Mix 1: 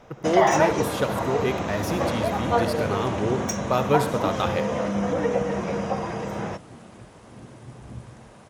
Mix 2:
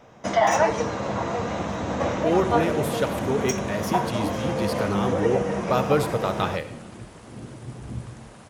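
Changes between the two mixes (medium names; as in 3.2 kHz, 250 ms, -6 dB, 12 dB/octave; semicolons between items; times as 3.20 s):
speech: entry +2.00 s; second sound +5.5 dB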